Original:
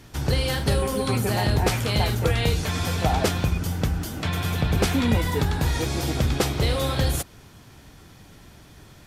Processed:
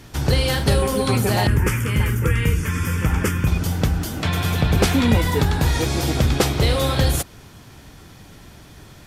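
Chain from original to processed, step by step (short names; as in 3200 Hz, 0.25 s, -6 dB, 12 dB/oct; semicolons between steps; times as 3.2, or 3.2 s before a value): 1.47–3.47 fixed phaser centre 1700 Hz, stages 4; gain +4.5 dB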